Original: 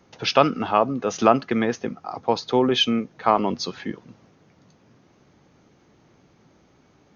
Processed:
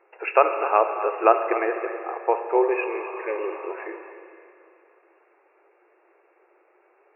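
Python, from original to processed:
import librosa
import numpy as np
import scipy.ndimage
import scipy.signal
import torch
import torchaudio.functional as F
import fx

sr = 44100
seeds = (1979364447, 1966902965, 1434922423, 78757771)

p1 = fx.brickwall_bandpass(x, sr, low_hz=330.0, high_hz=2800.0)
p2 = p1 + fx.echo_feedback(p1, sr, ms=254, feedback_pct=25, wet_db=-13, dry=0)
p3 = fx.spec_repair(p2, sr, seeds[0], start_s=2.65, length_s=0.99, low_hz=570.0, high_hz=1500.0, source='after')
y = fx.rev_schroeder(p3, sr, rt60_s=2.8, comb_ms=30, drr_db=7.0)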